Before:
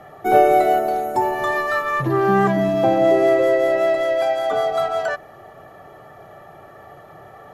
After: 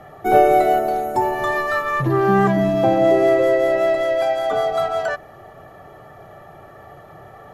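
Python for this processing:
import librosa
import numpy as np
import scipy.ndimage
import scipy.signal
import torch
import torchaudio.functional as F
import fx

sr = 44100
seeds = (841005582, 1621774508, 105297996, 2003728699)

y = fx.low_shelf(x, sr, hz=120.0, db=7.0)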